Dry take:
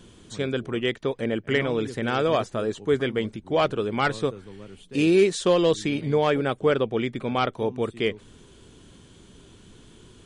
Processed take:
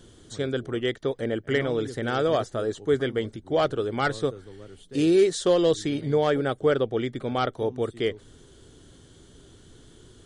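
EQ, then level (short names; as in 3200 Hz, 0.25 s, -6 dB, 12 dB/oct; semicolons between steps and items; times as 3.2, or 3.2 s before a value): thirty-one-band EQ 200 Hz -9 dB, 1000 Hz -7 dB, 2500 Hz -11 dB; 0.0 dB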